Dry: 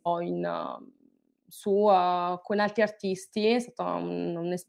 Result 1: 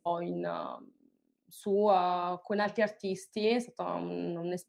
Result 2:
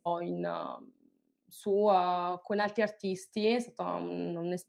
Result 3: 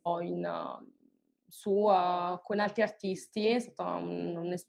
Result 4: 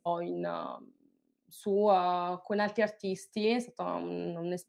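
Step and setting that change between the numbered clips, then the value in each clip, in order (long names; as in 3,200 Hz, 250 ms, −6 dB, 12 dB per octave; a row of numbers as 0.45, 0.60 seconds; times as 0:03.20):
flanger, speed: 0.87, 0.4, 2, 0.23 Hertz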